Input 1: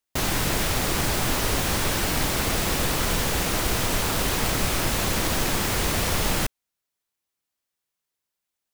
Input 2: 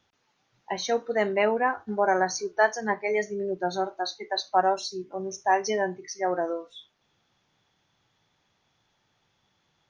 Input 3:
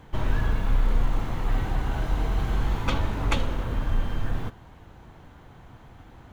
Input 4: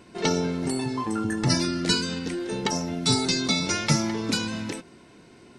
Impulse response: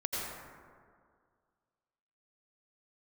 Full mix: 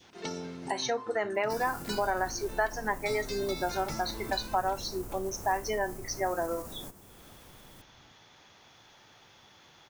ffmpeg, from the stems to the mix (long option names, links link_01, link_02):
-filter_complex "[0:a]equalizer=frequency=3600:width=1.3:gain=-11.5,acompressor=mode=upward:threshold=-37dB:ratio=2.5,alimiter=limit=-19.5dB:level=0:latency=1:release=198,adelay=1350,volume=-10dB[link_01];[1:a]equalizer=frequency=170:width_type=o:width=0.77:gain=-4.5,acompressor=mode=upward:threshold=-46dB:ratio=2.5,volume=1.5dB,asplit=2[link_02][link_03];[2:a]adelay=1800,volume=-12.5dB[link_04];[3:a]volume=-12.5dB[link_05];[link_03]apad=whole_len=444548[link_06];[link_01][link_06]sidechaingate=range=-12dB:threshold=-53dB:ratio=16:detection=peak[link_07];[link_07][link_04]amix=inputs=2:normalize=0,equalizer=frequency=2200:width_type=o:width=2.3:gain=-11.5,acompressor=threshold=-35dB:ratio=6,volume=0dB[link_08];[link_02][link_05]amix=inputs=2:normalize=0,adynamicequalizer=threshold=0.0158:dfrequency=1200:dqfactor=1:tfrequency=1200:tqfactor=1:attack=5:release=100:ratio=0.375:range=3:mode=boostabove:tftype=bell,acompressor=threshold=-29dB:ratio=3,volume=0dB[link_09];[link_08][link_09]amix=inputs=2:normalize=0,lowshelf=frequency=120:gain=-6"